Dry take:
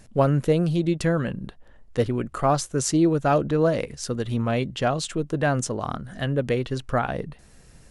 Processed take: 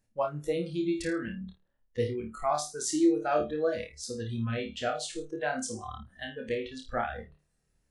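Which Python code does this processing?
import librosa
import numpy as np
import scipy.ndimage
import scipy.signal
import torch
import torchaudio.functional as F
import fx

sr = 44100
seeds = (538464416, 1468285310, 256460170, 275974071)

y = fx.room_flutter(x, sr, wall_m=4.6, rt60_s=0.39)
y = fx.noise_reduce_blind(y, sr, reduce_db=19)
y = F.gain(torch.from_numpy(y), -7.5).numpy()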